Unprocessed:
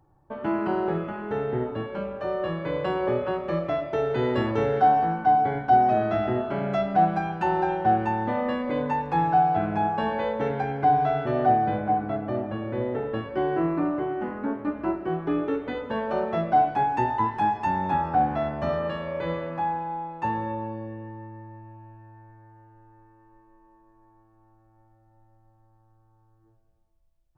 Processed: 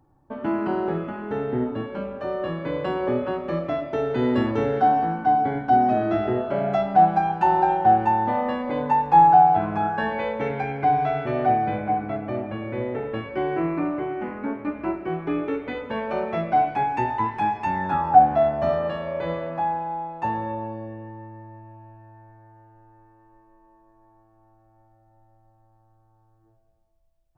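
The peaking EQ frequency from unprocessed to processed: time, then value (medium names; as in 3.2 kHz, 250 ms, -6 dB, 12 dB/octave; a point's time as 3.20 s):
peaking EQ +11.5 dB 0.26 oct
5.94 s 260 Hz
6.82 s 830 Hz
9.53 s 830 Hz
10.21 s 2.3 kHz
17.72 s 2.3 kHz
18.20 s 690 Hz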